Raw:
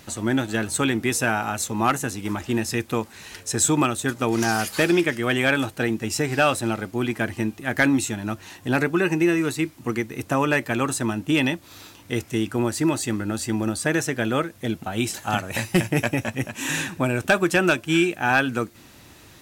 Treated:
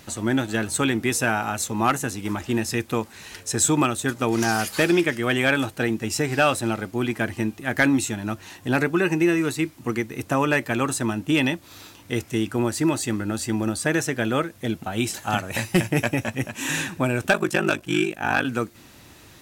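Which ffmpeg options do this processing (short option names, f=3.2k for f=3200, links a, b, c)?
-filter_complex "[0:a]asettb=1/sr,asplit=3[a][b][c];[a]atrim=end=17.324[d];[b]atrim=start=17.32:end=18.45,asetpts=PTS-STARTPTS,afade=t=in:d=0.004:c=qsin,afade=t=out:st=1.126:d=0.004:c=qsin,aeval=exprs='val(0)*sin(2*PI*25*n/s)':c=same[e];[c]atrim=start=18.446[f];[d][e]acrossfade=d=0.004:c1=hsin:c2=qsin[g];[g][f]acrossfade=d=0.004:c1=qsin:c2=hsin"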